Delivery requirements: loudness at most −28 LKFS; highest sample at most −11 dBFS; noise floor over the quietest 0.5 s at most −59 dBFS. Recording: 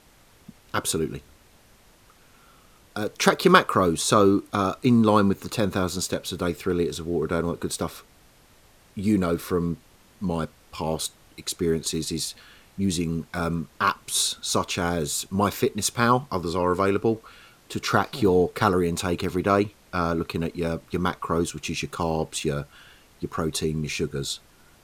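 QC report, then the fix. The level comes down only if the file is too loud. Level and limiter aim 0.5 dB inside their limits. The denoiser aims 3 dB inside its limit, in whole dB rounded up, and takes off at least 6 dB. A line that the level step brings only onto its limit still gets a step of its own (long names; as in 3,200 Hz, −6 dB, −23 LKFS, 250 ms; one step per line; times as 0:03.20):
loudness −25.0 LKFS: out of spec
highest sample −2.0 dBFS: out of spec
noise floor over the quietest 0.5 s −55 dBFS: out of spec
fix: broadband denoise 6 dB, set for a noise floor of −55 dBFS
level −3.5 dB
brickwall limiter −11.5 dBFS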